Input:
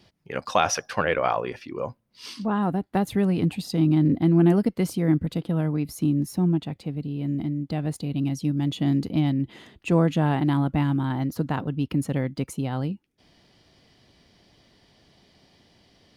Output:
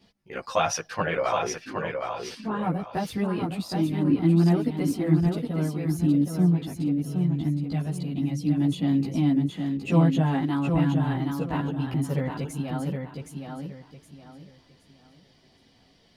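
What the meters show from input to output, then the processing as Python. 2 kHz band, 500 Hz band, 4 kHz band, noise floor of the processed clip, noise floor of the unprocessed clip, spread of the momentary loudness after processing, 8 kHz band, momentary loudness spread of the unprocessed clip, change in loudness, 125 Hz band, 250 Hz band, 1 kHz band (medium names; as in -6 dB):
-2.0 dB, -2.0 dB, -2.0 dB, -60 dBFS, -65 dBFS, 10 LU, -1.5 dB, 12 LU, -1.0 dB, -0.5 dB, -0.5 dB, -2.0 dB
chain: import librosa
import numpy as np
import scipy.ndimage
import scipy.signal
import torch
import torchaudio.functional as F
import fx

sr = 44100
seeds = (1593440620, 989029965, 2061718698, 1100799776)

p1 = fx.chorus_voices(x, sr, voices=4, hz=0.14, base_ms=15, depth_ms=4.4, mix_pct=60)
y = p1 + fx.echo_feedback(p1, sr, ms=767, feedback_pct=29, wet_db=-5.0, dry=0)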